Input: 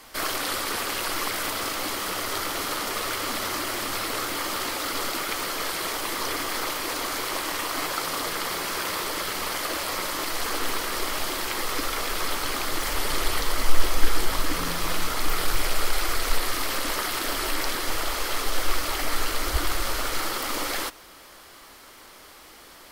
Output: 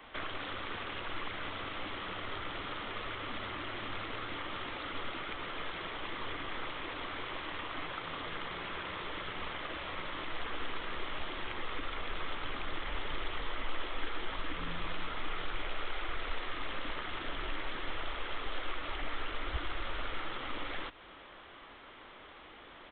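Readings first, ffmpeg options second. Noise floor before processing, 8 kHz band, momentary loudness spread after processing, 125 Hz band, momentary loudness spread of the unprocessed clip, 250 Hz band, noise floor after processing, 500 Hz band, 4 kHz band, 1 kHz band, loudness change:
-48 dBFS, under -40 dB, 1 LU, -9.0 dB, 1 LU, -10.5 dB, -53 dBFS, -11.5 dB, -12.5 dB, -11.0 dB, -12.5 dB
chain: -filter_complex "[0:a]aresample=8000,aresample=44100,acrossover=split=170|1500[s0][s1][s2];[s0]acompressor=threshold=0.0316:ratio=4[s3];[s1]acompressor=threshold=0.00891:ratio=4[s4];[s2]acompressor=threshold=0.01:ratio=4[s5];[s3][s4][s5]amix=inputs=3:normalize=0,volume=0.708"

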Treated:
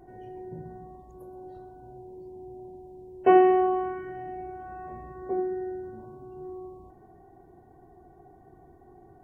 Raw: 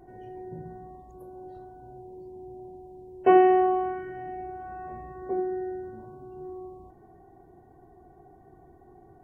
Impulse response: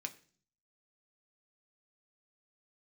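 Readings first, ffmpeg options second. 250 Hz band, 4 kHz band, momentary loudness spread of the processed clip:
0.0 dB, no reading, 25 LU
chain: -filter_complex "[0:a]asplit=2[s0][s1];[1:a]atrim=start_sample=2205,adelay=125[s2];[s1][s2]afir=irnorm=-1:irlink=0,volume=0.237[s3];[s0][s3]amix=inputs=2:normalize=0"

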